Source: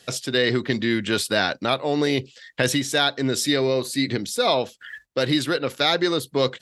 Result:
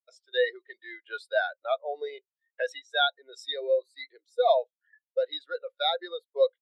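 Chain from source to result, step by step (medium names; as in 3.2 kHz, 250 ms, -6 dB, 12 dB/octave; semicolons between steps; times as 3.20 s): high-pass 500 Hz 24 dB/octave; spectral contrast expander 2.5:1; trim -4.5 dB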